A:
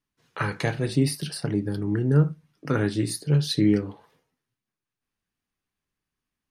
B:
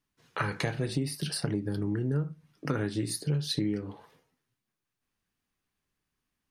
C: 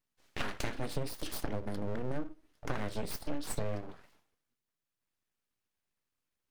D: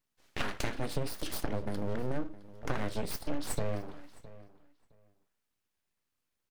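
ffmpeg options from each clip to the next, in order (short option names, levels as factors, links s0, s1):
-af "acompressor=threshold=0.0355:ratio=6,volume=1.26"
-af "aeval=exprs='abs(val(0))':c=same,volume=0.708"
-filter_complex "[0:a]asplit=2[s0][s1];[s1]adelay=663,lowpass=f=4200:p=1,volume=0.126,asplit=2[s2][s3];[s3]adelay=663,lowpass=f=4200:p=1,volume=0.18[s4];[s0][s2][s4]amix=inputs=3:normalize=0,volume=1.26"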